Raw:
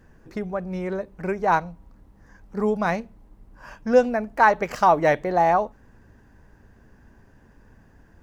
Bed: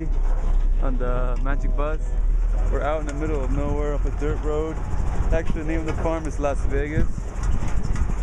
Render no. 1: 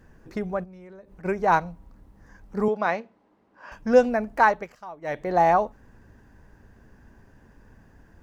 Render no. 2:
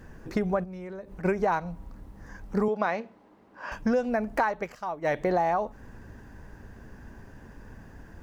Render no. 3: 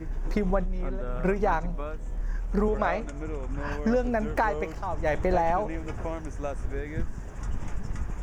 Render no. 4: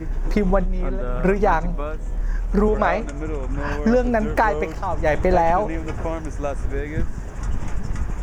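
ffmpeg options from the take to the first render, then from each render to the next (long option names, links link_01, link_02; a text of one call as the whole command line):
ffmpeg -i in.wav -filter_complex "[0:a]asplit=3[link_01][link_02][link_03];[link_01]afade=type=out:start_time=0.63:duration=0.02[link_04];[link_02]acompressor=threshold=-43dB:ratio=8:attack=3.2:release=140:knee=1:detection=peak,afade=type=in:start_time=0.63:duration=0.02,afade=type=out:start_time=1.24:duration=0.02[link_05];[link_03]afade=type=in:start_time=1.24:duration=0.02[link_06];[link_04][link_05][link_06]amix=inputs=3:normalize=0,asettb=1/sr,asplit=3[link_07][link_08][link_09];[link_07]atrim=end=2.684[link_10];[link_08]atrim=start=2.68:end=3.72,asetpts=PTS-STARTPTS,afade=type=in:duration=0.004:curve=qsin,afade=type=out:start_time=1.036:duration=0.004:curve=qsin,highpass=320,lowpass=4200[link_11];[link_09]atrim=start=3.716[link_12];[link_10][link_11]acrossfade=duration=0.004:curve1=hsin:curve2=qsin[link_13];[link_13][link_12]acrossfade=duration=0.004:curve1=qsin:curve2=hsin,asplit=3[link_14][link_15][link_16];[link_14]atrim=end=4.74,asetpts=PTS-STARTPTS,afade=type=out:start_time=4.37:duration=0.37:silence=0.0707946[link_17];[link_15]atrim=start=4.74:end=5.01,asetpts=PTS-STARTPTS,volume=-23dB[link_18];[link_16]atrim=start=5.01,asetpts=PTS-STARTPTS,afade=type=in:duration=0.37:silence=0.0707946[link_19];[link_17][link_18][link_19]concat=n=3:v=0:a=1" out.wav
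ffmpeg -i in.wav -filter_complex "[0:a]asplit=2[link_01][link_02];[link_02]alimiter=limit=-15.5dB:level=0:latency=1:release=116,volume=0.5dB[link_03];[link_01][link_03]amix=inputs=2:normalize=0,acompressor=threshold=-22dB:ratio=10" out.wav
ffmpeg -i in.wav -i bed.wav -filter_complex "[1:a]volume=-9.5dB[link_01];[0:a][link_01]amix=inputs=2:normalize=0" out.wav
ffmpeg -i in.wav -af "volume=7dB" out.wav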